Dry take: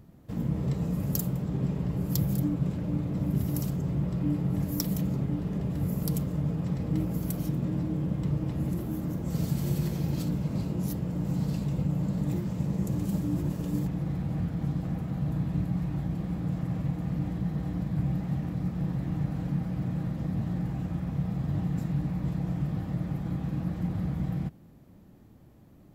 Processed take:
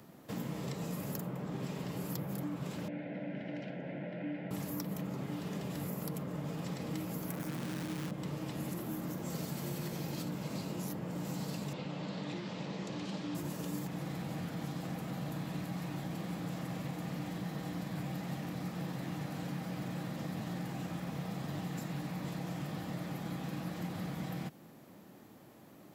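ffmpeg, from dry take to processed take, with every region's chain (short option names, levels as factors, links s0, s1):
-filter_complex "[0:a]asettb=1/sr,asplit=3[s0][s1][s2];[s0]atrim=end=2.884[s3];[s1]atrim=start=2.88:end=4.51,asetpts=PTS-STARTPTS,afade=t=in:d=0.004:c=qsin,afade=t=out:st=1.626:d=0.004:c=qsin,asuperstop=centerf=1200:order=4:qfactor=2.3,highpass=290,equalizer=f=400:t=q:w=4:g=-9,equalizer=f=590:t=q:w=4:g=5,equalizer=f=930:t=q:w=4:g=-10,equalizer=f=1400:t=q:w=4:g=5,equalizer=f=2100:t=q:w=4:g=3,lowpass=f=2500:w=0.5412,lowpass=f=2500:w=1.3066[s4];[s2]atrim=start=4.506[s5];[s3][s4]acrossfade=d=0.004:c1=hsin:c2=qsin[s6];[s6][s5]acrossfade=d=0.004:c1=qsin:c2=hsin,asettb=1/sr,asplit=3[s7][s8][s9];[s7]atrim=end=7.304[s10];[s8]atrim=start=7.3:end=8.11,asetpts=PTS-STARTPTS,afade=t=in:d=0.004:c=qsin,afade=t=out:st=0.806:d=0.004:c=qsin,asuperstop=centerf=3600:order=20:qfactor=1.5,acrusher=bits=7:dc=4:mix=0:aa=0.000001[s11];[s9]atrim=start=8.106[s12];[s10][s11]acrossfade=d=0.004:c1=hsin:c2=qsin[s13];[s13][s12]acrossfade=d=0.004:c1=qsin:c2=hsin,asettb=1/sr,asplit=3[s14][s15][s16];[s14]atrim=end=11.734[s17];[s15]atrim=start=11.73:end=13.35,asetpts=PTS-STARTPTS,afade=t=in:d=0.004:c=qsin,afade=t=out:st=1.616:d=0.004:c=qsin,lowpass=f=4100:w=0.5412,lowpass=f=4100:w=1.3066,aemphasis=mode=production:type=bsi[s18];[s16]atrim=start=13.346[s19];[s17][s18]acrossfade=d=0.004:c1=hsin:c2=qsin[s20];[s20][s19]acrossfade=d=0.004:c1=qsin:c2=hsin,highpass=150,lowshelf=f=340:g=-11.5,acrossover=split=250|690|2600[s21][s22][s23][s24];[s21]acompressor=threshold=0.00398:ratio=4[s25];[s22]acompressor=threshold=0.002:ratio=4[s26];[s23]acompressor=threshold=0.00112:ratio=4[s27];[s24]acompressor=threshold=0.00141:ratio=4[s28];[s25][s26][s27][s28]amix=inputs=4:normalize=0,volume=2.51"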